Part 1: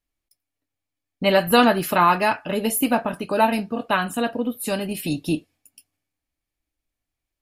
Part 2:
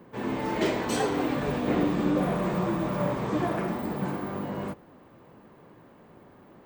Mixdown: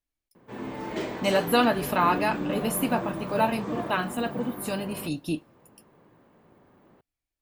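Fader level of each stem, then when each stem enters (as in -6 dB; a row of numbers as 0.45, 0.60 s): -6.0, -5.5 dB; 0.00, 0.35 s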